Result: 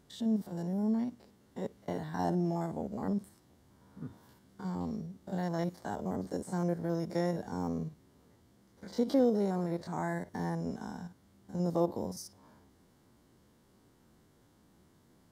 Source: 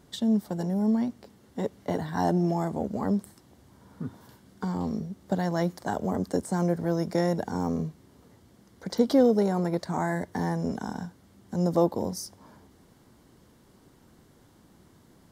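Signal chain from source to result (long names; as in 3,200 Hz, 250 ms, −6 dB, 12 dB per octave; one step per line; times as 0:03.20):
spectrum averaged block by block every 50 ms
level −6 dB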